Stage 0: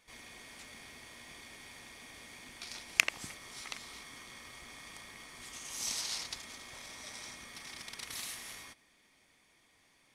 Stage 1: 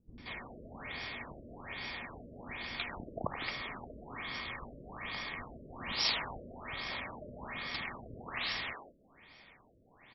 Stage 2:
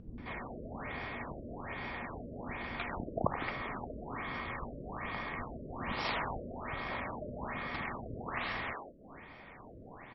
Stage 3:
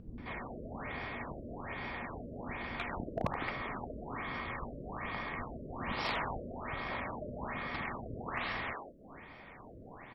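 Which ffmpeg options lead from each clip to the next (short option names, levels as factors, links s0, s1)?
-filter_complex "[0:a]acrossover=split=320[s0][s1];[s1]adelay=180[s2];[s0][s2]amix=inputs=2:normalize=0,afftfilt=real='re*lt(b*sr/1024,630*pow(5700/630,0.5+0.5*sin(2*PI*1.2*pts/sr)))':imag='im*lt(b*sr/1024,630*pow(5700/630,0.5+0.5*sin(2*PI*1.2*pts/sr)))':win_size=1024:overlap=0.75,volume=3.55"
-af "acompressor=mode=upward:threshold=0.00501:ratio=2.5,lowpass=1600,volume=1.88"
-af "asoftclip=type=hard:threshold=0.0596"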